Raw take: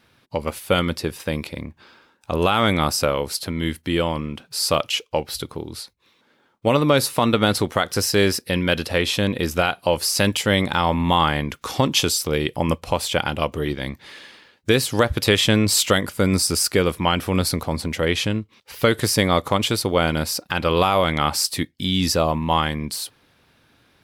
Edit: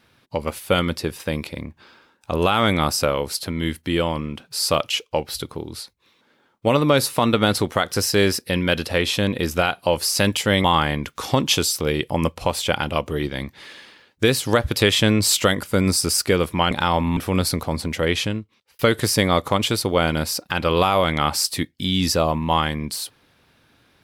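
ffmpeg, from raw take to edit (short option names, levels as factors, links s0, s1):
-filter_complex "[0:a]asplit=5[s0][s1][s2][s3][s4];[s0]atrim=end=10.642[s5];[s1]atrim=start=11.098:end=17.172[s6];[s2]atrim=start=10.638:end=11.102[s7];[s3]atrim=start=17.168:end=18.79,asetpts=PTS-STARTPTS,afade=t=out:st=1.012:d=0.61[s8];[s4]atrim=start=18.79,asetpts=PTS-STARTPTS,afade=t=in:d=0.004:c=hsin[s9];[s5][s6]acrossfade=d=0.004:c1=hsin:c2=hsin[s10];[s10][s7]acrossfade=d=0.004:c1=hsin:c2=hsin[s11];[s8][s9]concat=n=2:v=0:a=1[s12];[s11][s12]acrossfade=d=0.004:c1=hsin:c2=hsin"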